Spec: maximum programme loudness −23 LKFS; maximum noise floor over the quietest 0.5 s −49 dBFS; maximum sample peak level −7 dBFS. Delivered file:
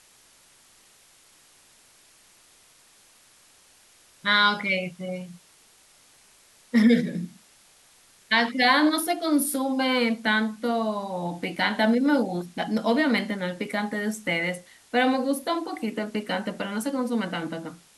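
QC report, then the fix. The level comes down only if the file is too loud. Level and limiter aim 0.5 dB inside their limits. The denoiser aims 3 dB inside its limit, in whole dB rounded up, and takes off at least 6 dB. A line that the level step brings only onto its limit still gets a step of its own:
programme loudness −24.5 LKFS: in spec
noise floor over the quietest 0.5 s −57 dBFS: in spec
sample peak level −8.5 dBFS: in spec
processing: no processing needed

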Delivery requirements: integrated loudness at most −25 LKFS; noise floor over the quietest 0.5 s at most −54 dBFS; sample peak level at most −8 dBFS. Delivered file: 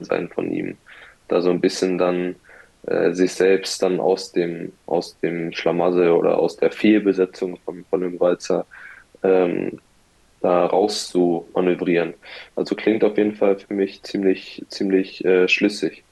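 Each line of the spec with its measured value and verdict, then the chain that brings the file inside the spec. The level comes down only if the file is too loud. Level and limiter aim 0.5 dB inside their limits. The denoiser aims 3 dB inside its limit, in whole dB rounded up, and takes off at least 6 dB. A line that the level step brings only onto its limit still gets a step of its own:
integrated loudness −20.5 LKFS: out of spec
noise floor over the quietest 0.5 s −57 dBFS: in spec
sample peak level −6.0 dBFS: out of spec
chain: level −5 dB

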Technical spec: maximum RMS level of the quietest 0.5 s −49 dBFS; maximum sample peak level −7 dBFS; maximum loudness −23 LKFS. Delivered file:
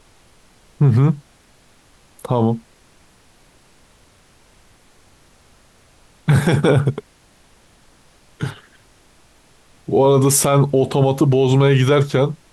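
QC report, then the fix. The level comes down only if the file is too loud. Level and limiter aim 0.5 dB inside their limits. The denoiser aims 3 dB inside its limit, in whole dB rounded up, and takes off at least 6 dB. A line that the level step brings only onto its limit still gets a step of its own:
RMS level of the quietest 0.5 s −53 dBFS: in spec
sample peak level −5.5 dBFS: out of spec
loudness −16.5 LKFS: out of spec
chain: level −7 dB

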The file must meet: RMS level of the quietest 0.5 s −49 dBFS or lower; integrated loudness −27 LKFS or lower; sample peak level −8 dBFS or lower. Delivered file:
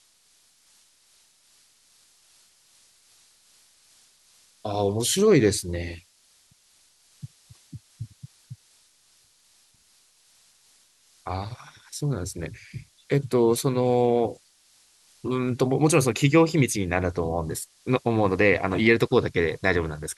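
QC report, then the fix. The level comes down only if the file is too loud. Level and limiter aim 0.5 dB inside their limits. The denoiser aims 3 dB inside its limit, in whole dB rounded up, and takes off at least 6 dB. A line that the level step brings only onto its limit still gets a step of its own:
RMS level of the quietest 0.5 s −62 dBFS: in spec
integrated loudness −23.5 LKFS: out of spec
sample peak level −5.0 dBFS: out of spec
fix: level −4 dB

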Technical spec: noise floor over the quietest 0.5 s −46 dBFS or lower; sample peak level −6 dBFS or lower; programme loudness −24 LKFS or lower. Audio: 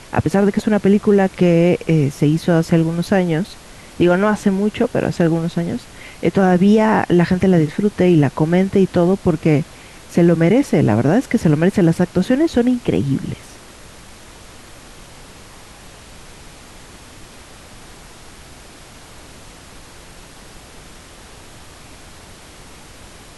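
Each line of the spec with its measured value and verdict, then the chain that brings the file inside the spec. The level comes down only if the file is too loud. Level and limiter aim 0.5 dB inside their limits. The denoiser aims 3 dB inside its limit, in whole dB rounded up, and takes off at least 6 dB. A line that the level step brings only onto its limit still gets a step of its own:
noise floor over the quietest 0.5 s −40 dBFS: out of spec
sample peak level −4.5 dBFS: out of spec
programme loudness −16.0 LKFS: out of spec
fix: level −8.5 dB

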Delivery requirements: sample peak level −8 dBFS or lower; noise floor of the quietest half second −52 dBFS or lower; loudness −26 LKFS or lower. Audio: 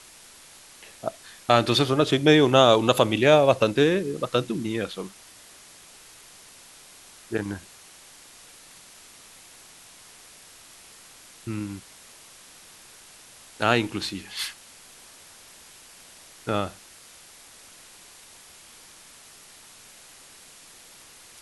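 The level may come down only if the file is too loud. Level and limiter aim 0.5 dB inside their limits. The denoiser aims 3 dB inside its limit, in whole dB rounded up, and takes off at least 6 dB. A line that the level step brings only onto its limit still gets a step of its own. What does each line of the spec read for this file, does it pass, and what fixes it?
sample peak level −2.5 dBFS: out of spec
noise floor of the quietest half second −49 dBFS: out of spec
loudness −22.5 LKFS: out of spec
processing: level −4 dB
brickwall limiter −8.5 dBFS

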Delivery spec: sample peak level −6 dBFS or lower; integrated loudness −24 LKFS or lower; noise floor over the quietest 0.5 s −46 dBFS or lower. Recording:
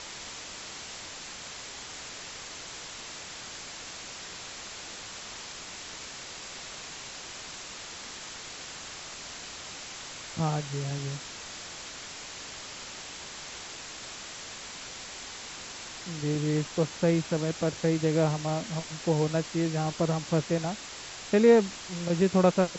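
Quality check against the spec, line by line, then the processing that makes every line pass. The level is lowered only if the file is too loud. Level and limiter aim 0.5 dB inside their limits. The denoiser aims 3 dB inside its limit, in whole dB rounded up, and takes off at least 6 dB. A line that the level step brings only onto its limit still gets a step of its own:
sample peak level −9.5 dBFS: in spec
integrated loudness −32.0 LKFS: in spec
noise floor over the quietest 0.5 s −42 dBFS: out of spec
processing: broadband denoise 7 dB, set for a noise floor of −42 dBFS

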